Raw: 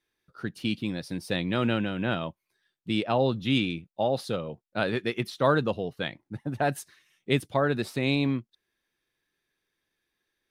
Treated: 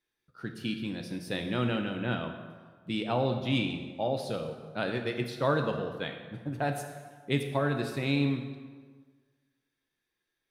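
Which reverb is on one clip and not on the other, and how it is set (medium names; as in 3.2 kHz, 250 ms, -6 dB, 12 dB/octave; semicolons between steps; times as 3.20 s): plate-style reverb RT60 1.5 s, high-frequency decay 0.7×, DRR 4.5 dB; trim -5 dB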